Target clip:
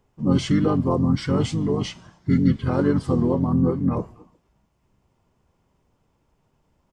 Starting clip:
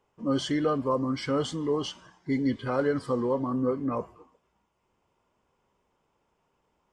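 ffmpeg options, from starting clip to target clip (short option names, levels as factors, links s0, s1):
-filter_complex "[0:a]asplit=3[s0][s1][s2];[s1]asetrate=29433,aresample=44100,atempo=1.49831,volume=0.562[s3];[s2]asetrate=37084,aresample=44100,atempo=1.18921,volume=0.355[s4];[s0][s3][s4]amix=inputs=3:normalize=0,bass=f=250:g=12,treble=f=4000:g=4"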